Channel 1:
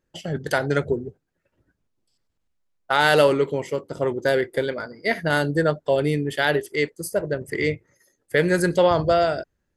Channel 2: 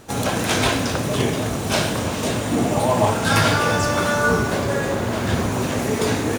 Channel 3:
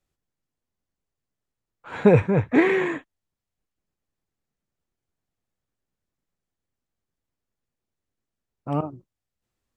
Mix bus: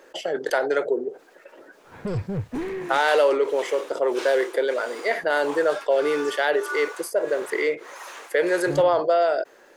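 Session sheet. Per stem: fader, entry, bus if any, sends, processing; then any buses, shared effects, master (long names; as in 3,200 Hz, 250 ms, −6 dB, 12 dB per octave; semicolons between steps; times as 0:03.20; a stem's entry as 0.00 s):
−3.5 dB, 0.00 s, no send, high-pass filter 440 Hz 24 dB per octave; envelope flattener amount 50%
−13.5 dB, 2.45 s, no send, high-pass filter 990 Hz 24 dB per octave; automatic gain control gain up to 7 dB; tremolo along a rectified sine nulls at 1.6 Hz
−11.0 dB, 0.00 s, no send, gain into a clipping stage and back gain 18.5 dB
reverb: not used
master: spectral tilt −2.5 dB per octave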